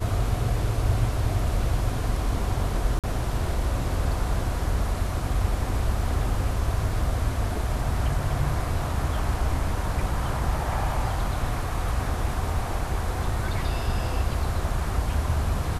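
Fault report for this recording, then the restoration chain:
2.99–3.04 gap 47 ms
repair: interpolate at 2.99, 47 ms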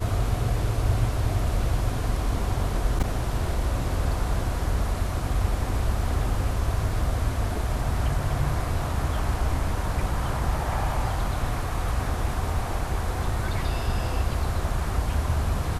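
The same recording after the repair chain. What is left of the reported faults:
none

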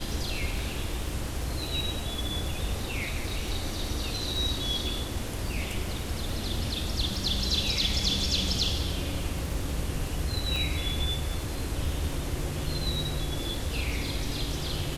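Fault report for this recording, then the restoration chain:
crackle 31/s -33 dBFS
10.56 pop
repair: de-click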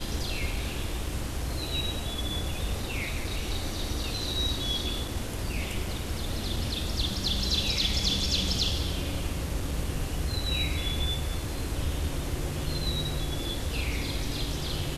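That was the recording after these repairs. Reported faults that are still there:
10.56 pop

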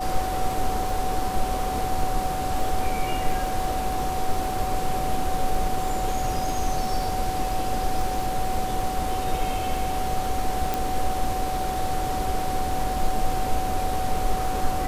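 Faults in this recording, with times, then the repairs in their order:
crackle 25/s -29 dBFS
tone 750 Hz -27 dBFS
10.74 pop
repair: de-click; notch 750 Hz, Q 30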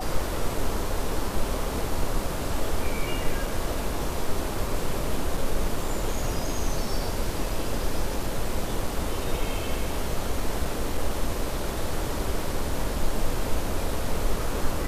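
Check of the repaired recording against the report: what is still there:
none

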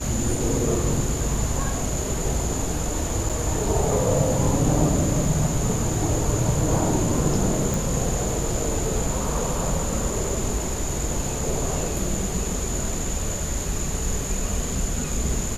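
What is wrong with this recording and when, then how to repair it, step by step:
3.29–3.3 gap 6.5 ms
7.74 pop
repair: de-click; interpolate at 3.29, 6.5 ms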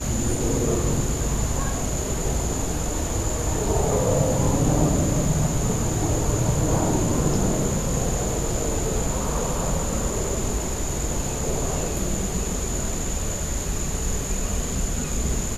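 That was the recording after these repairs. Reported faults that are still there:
none

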